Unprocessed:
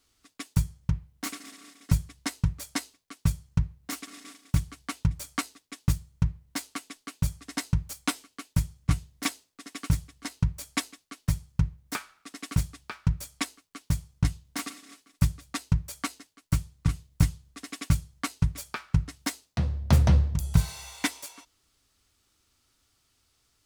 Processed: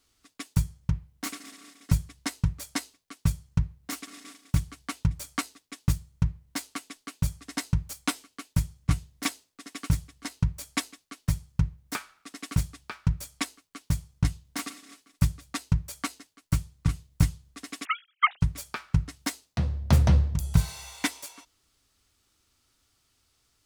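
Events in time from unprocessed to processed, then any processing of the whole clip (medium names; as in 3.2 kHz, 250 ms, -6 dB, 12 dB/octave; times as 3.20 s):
17.85–18.41 s: formants replaced by sine waves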